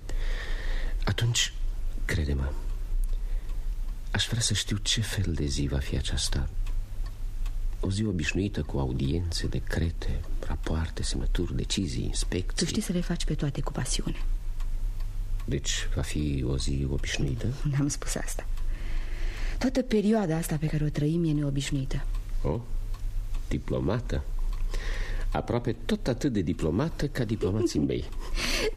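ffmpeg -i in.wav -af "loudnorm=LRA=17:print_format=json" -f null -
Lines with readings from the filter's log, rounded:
"input_i" : "-30.3",
"input_tp" : "-13.0",
"input_lra" : "3.3",
"input_thresh" : "-40.3",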